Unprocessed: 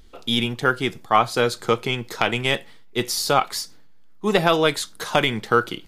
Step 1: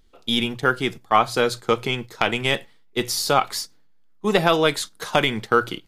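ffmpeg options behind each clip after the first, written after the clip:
-af "bandreject=f=60:t=h:w=6,bandreject=f=120:t=h:w=6,agate=range=0.355:threshold=0.0282:ratio=16:detection=peak"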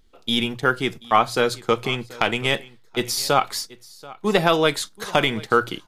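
-af "aecho=1:1:733:0.0891"

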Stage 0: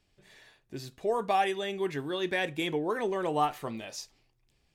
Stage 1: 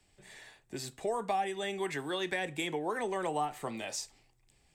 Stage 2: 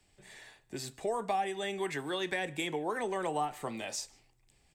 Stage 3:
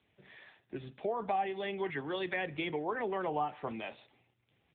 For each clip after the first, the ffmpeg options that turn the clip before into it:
-filter_complex "[0:a]equalizer=f=800:t=o:w=0.33:g=5,equalizer=f=2000:t=o:w=0.33:g=4,equalizer=f=8000:t=o:w=0.33:g=12,acrossover=split=120|250|530[s0][s1][s2][s3];[s0]acompressor=threshold=0.001:ratio=4[s4];[s1]acompressor=threshold=0.00316:ratio=4[s5];[s2]acompressor=threshold=0.00708:ratio=4[s6];[s3]acompressor=threshold=0.0158:ratio=4[s7];[s4][s5][s6][s7]amix=inputs=4:normalize=0,volume=1.26"
-filter_complex "[0:a]asplit=2[s0][s1];[s1]adelay=151.6,volume=0.0562,highshelf=f=4000:g=-3.41[s2];[s0][s2]amix=inputs=2:normalize=0"
-ar 8000 -c:a libopencore_amrnb -b:a 7950

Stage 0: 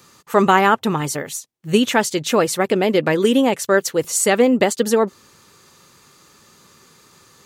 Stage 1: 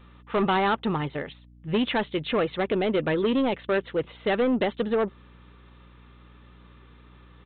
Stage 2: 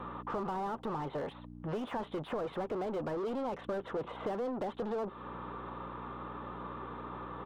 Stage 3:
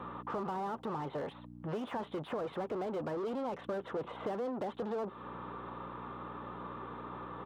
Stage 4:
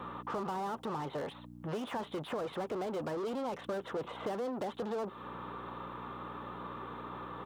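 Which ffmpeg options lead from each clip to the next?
-af "aresample=8000,asoftclip=type=tanh:threshold=0.211,aresample=44100,aeval=exprs='val(0)+0.00501*(sin(2*PI*60*n/s)+sin(2*PI*2*60*n/s)/2+sin(2*PI*3*60*n/s)/3+sin(2*PI*4*60*n/s)/4+sin(2*PI*5*60*n/s)/5)':c=same,volume=0.596"
-filter_complex "[0:a]asplit=2[s0][s1];[s1]highpass=f=720:p=1,volume=31.6,asoftclip=type=tanh:threshold=0.168[s2];[s0][s2]amix=inputs=2:normalize=0,lowpass=f=2000:p=1,volume=0.501,highshelf=f=1500:t=q:w=1.5:g=-12,acrossover=split=460|2300[s3][s4][s5];[s3]acompressor=threshold=0.0158:ratio=4[s6];[s4]acompressor=threshold=0.0178:ratio=4[s7];[s5]acompressor=threshold=0.00251:ratio=4[s8];[s6][s7][s8]amix=inputs=3:normalize=0,volume=0.596"
-af "highpass=71,volume=0.891"
-af "highshelf=f=3600:g=10.5"

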